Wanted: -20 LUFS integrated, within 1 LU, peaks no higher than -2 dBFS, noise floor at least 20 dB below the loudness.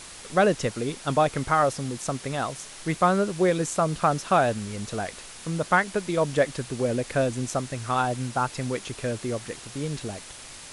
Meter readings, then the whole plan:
noise floor -43 dBFS; noise floor target -46 dBFS; loudness -26.0 LUFS; peak -7.0 dBFS; loudness target -20.0 LUFS
-> denoiser 6 dB, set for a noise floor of -43 dBFS; gain +6 dB; limiter -2 dBFS

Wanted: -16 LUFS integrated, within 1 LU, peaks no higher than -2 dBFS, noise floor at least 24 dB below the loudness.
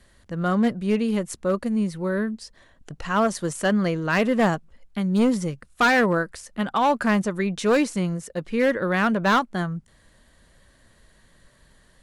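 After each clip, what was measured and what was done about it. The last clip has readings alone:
clipped 1.3%; flat tops at -14.0 dBFS; loudness -23.0 LUFS; peak -14.0 dBFS; loudness target -16.0 LUFS
-> clip repair -14 dBFS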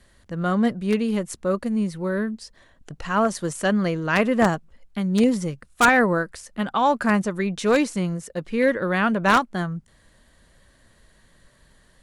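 clipped 0.0%; loudness -22.5 LUFS; peak -5.0 dBFS; loudness target -16.0 LUFS
-> gain +6.5 dB; limiter -2 dBFS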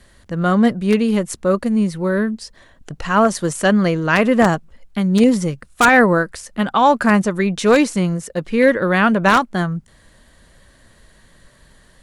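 loudness -16.5 LUFS; peak -2.0 dBFS; noise floor -52 dBFS

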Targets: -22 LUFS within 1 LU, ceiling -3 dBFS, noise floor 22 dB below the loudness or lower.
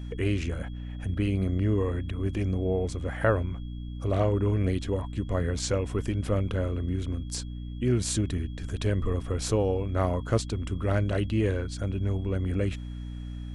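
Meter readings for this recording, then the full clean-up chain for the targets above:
hum 60 Hz; harmonics up to 300 Hz; hum level -34 dBFS; steady tone 3300 Hz; tone level -57 dBFS; loudness -29.0 LUFS; peak -11.0 dBFS; loudness target -22.0 LUFS
-> notches 60/120/180/240/300 Hz; notch 3300 Hz, Q 30; gain +7 dB

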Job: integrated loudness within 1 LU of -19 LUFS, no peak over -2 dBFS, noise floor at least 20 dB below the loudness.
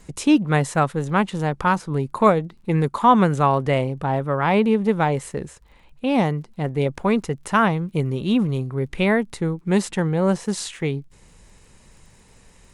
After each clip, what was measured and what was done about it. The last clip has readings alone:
ticks 34/s; loudness -21.0 LUFS; peak -3.0 dBFS; loudness target -19.0 LUFS
-> de-click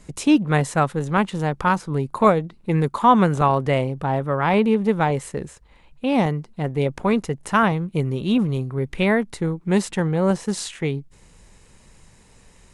ticks 0/s; loudness -21.0 LUFS; peak -3.0 dBFS; loudness target -19.0 LUFS
-> gain +2 dB; limiter -2 dBFS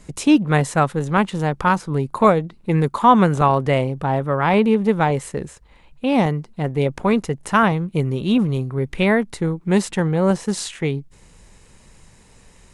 loudness -19.0 LUFS; peak -2.0 dBFS; noise floor -50 dBFS

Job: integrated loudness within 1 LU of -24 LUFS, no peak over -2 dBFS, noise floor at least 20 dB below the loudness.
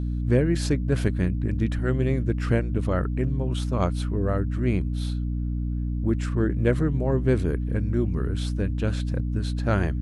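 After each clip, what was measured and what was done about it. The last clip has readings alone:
hum 60 Hz; harmonics up to 300 Hz; hum level -24 dBFS; loudness -25.5 LUFS; peak -8.0 dBFS; loudness target -24.0 LUFS
-> de-hum 60 Hz, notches 5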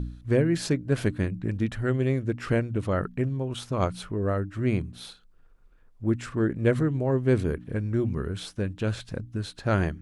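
hum none; loudness -27.5 LUFS; peak -10.5 dBFS; loudness target -24.0 LUFS
-> gain +3.5 dB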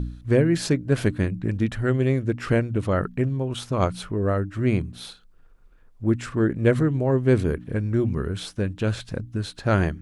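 loudness -24.0 LUFS; peak -7.0 dBFS; noise floor -52 dBFS

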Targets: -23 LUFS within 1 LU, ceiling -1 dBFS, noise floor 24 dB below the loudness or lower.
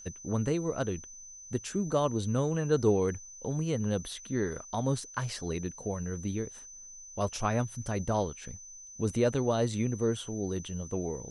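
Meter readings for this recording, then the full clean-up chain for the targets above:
steady tone 6100 Hz; tone level -46 dBFS; loudness -32.0 LUFS; peak -13.5 dBFS; loudness target -23.0 LUFS
-> notch 6100 Hz, Q 30; gain +9 dB

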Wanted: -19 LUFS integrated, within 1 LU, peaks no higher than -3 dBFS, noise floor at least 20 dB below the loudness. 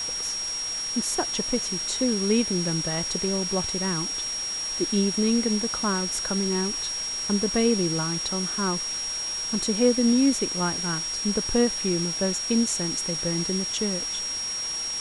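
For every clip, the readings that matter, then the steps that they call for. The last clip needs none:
steady tone 5600 Hz; tone level -28 dBFS; noise floor -31 dBFS; noise floor target -45 dBFS; loudness -24.5 LUFS; peak -8.0 dBFS; loudness target -19.0 LUFS
-> notch 5600 Hz, Q 30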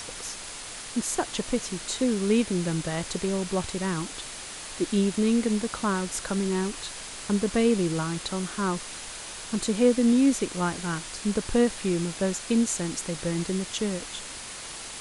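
steady tone none; noise floor -39 dBFS; noise floor target -48 dBFS
-> noise print and reduce 9 dB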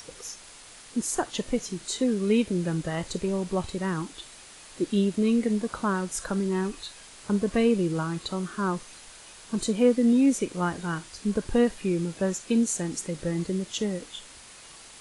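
noise floor -48 dBFS; loudness -27.0 LUFS; peak -9.5 dBFS; loudness target -19.0 LUFS
-> gain +8 dB; limiter -3 dBFS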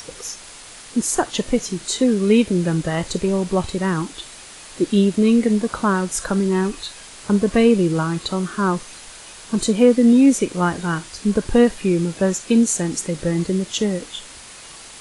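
loudness -19.0 LUFS; peak -3.0 dBFS; noise floor -40 dBFS

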